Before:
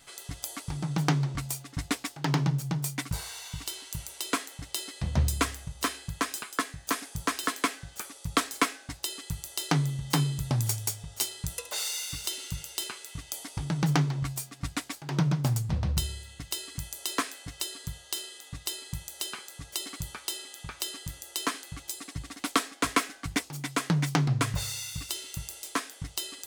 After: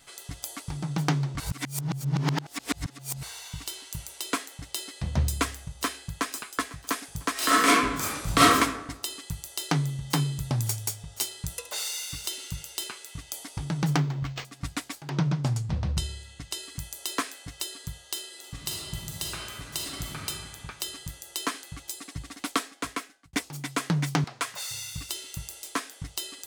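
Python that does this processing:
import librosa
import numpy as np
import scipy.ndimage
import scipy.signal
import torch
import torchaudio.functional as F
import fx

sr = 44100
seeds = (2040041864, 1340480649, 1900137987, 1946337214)

y = fx.echo_throw(x, sr, start_s=5.72, length_s=0.59, ms=500, feedback_pct=45, wet_db=-17.5)
y = fx.reverb_throw(y, sr, start_s=7.33, length_s=1.22, rt60_s=0.99, drr_db=-10.5)
y = fx.resample_linear(y, sr, factor=4, at=(13.97, 14.45))
y = fx.lowpass(y, sr, hz=fx.line((15.09, 6300.0), (16.61, 11000.0)), slope=12, at=(15.09, 16.61), fade=0.02)
y = fx.reverb_throw(y, sr, start_s=18.27, length_s=1.97, rt60_s=2.0, drr_db=-2.0)
y = fx.highpass(y, sr, hz=640.0, slope=12, at=(24.24, 24.71))
y = fx.edit(y, sr, fx.reverse_span(start_s=1.4, length_s=1.83),
    fx.fade_out_span(start_s=22.41, length_s=0.92), tone=tone)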